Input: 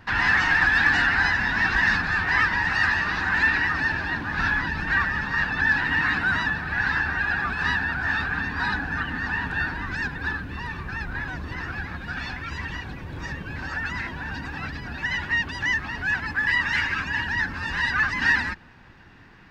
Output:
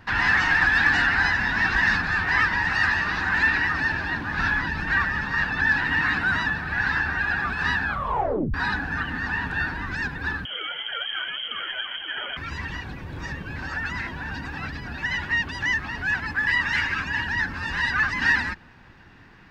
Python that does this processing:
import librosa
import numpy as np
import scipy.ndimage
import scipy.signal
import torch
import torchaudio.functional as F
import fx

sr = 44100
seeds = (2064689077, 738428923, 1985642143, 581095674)

y = fx.freq_invert(x, sr, carrier_hz=3200, at=(10.45, 12.37))
y = fx.edit(y, sr, fx.tape_stop(start_s=7.83, length_s=0.71), tone=tone)